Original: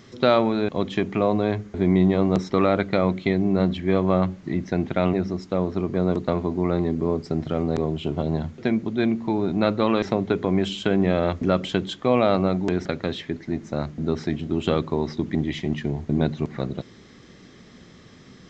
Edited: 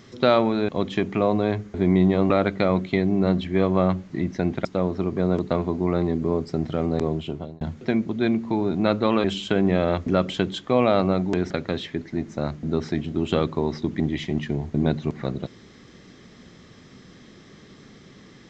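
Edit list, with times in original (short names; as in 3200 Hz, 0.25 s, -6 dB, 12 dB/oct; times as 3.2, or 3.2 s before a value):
2.3–2.63 cut
4.98–5.42 cut
7.91–8.38 fade out
10.01–10.59 cut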